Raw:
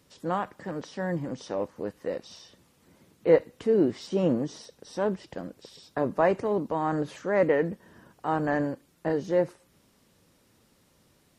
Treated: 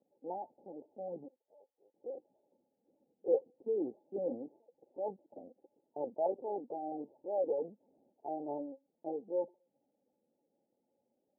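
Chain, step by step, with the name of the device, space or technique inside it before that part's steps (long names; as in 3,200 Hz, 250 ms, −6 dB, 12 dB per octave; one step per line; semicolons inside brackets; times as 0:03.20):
adaptive Wiener filter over 25 samples
brick-wall band-stop 910–4,400 Hz
0:01.28–0:01.95: first difference
talking toy (linear-prediction vocoder at 8 kHz pitch kept; high-pass filter 360 Hz 12 dB per octave; parametric band 1,400 Hz +5 dB 0.32 octaves)
level −9 dB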